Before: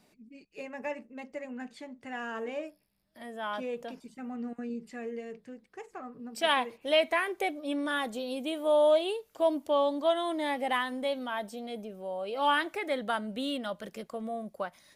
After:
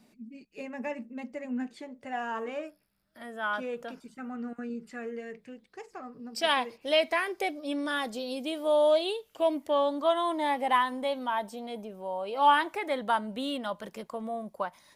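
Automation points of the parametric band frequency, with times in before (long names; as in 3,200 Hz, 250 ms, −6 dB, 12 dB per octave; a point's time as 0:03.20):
parametric band +10.5 dB 0.38 octaves
0:01.51 230 Hz
0:02.56 1,400 Hz
0:05.18 1,400 Hz
0:05.82 5,000 Hz
0:08.91 5,000 Hz
0:10.23 960 Hz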